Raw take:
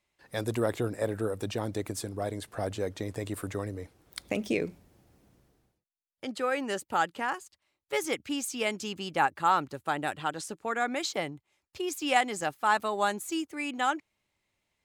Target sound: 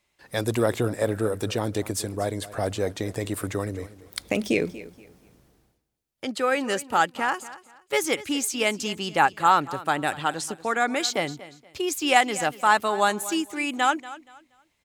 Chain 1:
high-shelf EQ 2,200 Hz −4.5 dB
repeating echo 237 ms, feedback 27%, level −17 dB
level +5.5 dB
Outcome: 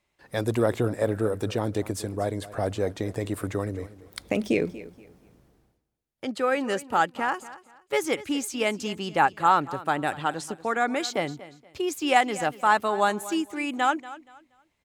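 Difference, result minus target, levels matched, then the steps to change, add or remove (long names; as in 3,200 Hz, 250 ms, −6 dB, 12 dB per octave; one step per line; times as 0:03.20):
4,000 Hz band −3.5 dB
change: high-shelf EQ 2,200 Hz +2.5 dB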